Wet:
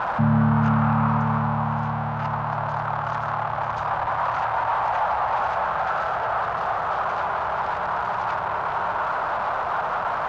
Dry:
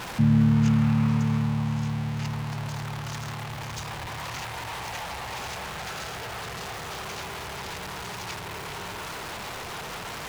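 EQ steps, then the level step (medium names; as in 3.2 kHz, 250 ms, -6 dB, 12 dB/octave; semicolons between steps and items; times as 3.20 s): low-pass 2.6 kHz 12 dB/octave; high-order bell 930 Hz +15 dB; 0.0 dB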